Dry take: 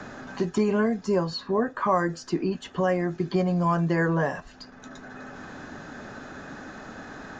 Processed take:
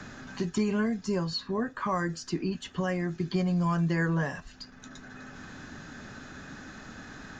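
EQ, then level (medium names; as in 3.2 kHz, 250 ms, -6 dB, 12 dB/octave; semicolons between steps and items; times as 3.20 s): peaking EQ 620 Hz -11 dB 2.5 oct; +1.5 dB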